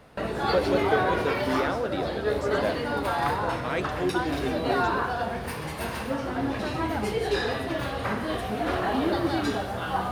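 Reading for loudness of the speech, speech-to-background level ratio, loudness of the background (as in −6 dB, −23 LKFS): −31.0 LKFS, −3.0 dB, −28.0 LKFS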